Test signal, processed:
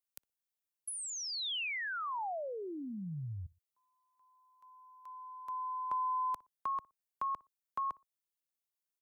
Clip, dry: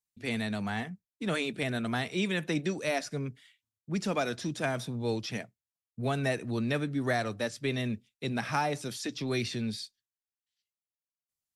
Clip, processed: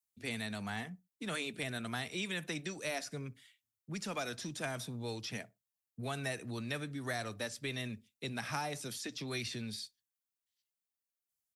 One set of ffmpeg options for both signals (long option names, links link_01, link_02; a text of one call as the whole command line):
ffmpeg -i in.wav -filter_complex "[0:a]asplit=2[link_01][link_02];[link_02]adelay=60,lowpass=frequency=1200:poles=1,volume=-22.5dB,asplit=2[link_03][link_04];[link_04]adelay=60,lowpass=frequency=1200:poles=1,volume=0.25[link_05];[link_03][link_05]amix=inputs=2:normalize=0[link_06];[link_01][link_06]amix=inputs=2:normalize=0,crystalizer=i=1:c=0,acrossover=split=110|790|3400[link_07][link_08][link_09][link_10];[link_07]acompressor=threshold=-44dB:ratio=4[link_11];[link_08]acompressor=threshold=-37dB:ratio=4[link_12];[link_09]acompressor=threshold=-33dB:ratio=4[link_13];[link_10]acompressor=threshold=-38dB:ratio=4[link_14];[link_11][link_12][link_13][link_14]amix=inputs=4:normalize=0,volume=-4.5dB" out.wav